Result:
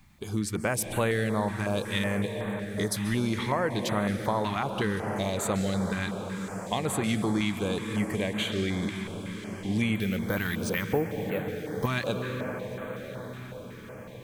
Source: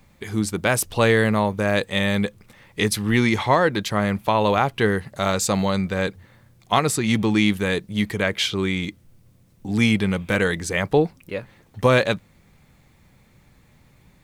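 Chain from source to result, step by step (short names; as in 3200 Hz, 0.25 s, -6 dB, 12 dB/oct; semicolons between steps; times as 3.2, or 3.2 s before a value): 9.95–11.87 careless resampling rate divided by 3×, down filtered, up hold; on a send at -8.5 dB: reverb RT60 5.0 s, pre-delay 0.123 s; on the sum: compressor 2.5:1, threshold -23 dBFS, peak gain reduction 8 dB; diffused feedback echo 1.18 s, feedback 66%, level -14.5 dB; stepped notch 5.4 Hz 500–5200 Hz; gain -2.5 dB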